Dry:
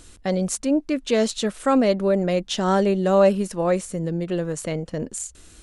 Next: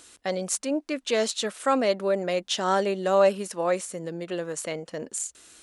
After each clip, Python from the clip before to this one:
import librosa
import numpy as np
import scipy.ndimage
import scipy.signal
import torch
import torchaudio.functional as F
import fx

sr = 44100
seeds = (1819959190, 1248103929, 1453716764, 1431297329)

y = fx.highpass(x, sr, hz=240.0, slope=6)
y = fx.low_shelf(y, sr, hz=310.0, db=-10.5)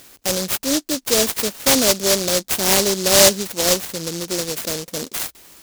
y = fx.noise_mod_delay(x, sr, seeds[0], noise_hz=5300.0, depth_ms=0.28)
y = F.gain(torch.from_numpy(y), 7.0).numpy()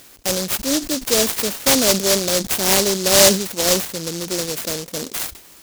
y = fx.sustainer(x, sr, db_per_s=120.0)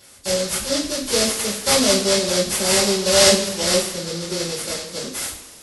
y = fx.freq_compress(x, sr, knee_hz=3300.0, ratio=1.5)
y = fx.rev_double_slope(y, sr, seeds[1], early_s=0.31, late_s=1.7, knee_db=-16, drr_db=-8.5)
y = F.gain(torch.from_numpy(y), -9.5).numpy()